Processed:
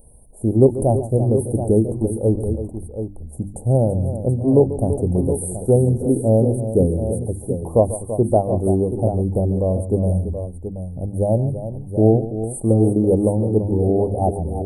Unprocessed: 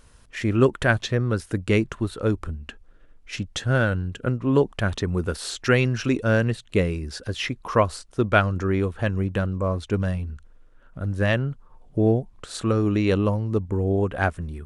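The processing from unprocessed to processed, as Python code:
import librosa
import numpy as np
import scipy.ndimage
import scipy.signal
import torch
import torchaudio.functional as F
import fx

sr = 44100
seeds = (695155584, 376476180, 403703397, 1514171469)

y = scipy.signal.sosfilt(scipy.signal.cheby1(5, 1.0, [820.0, 8900.0], 'bandstop', fs=sr, output='sos'), x)
y = fx.high_shelf(y, sr, hz=4100.0, db=7.0)
y = fx.hum_notches(y, sr, base_hz=50, count=7)
y = fx.echo_multitap(y, sr, ms=(140, 334, 728), db=(-14.0, -11.5, -9.5))
y = y * 10.0 ** (6.0 / 20.0)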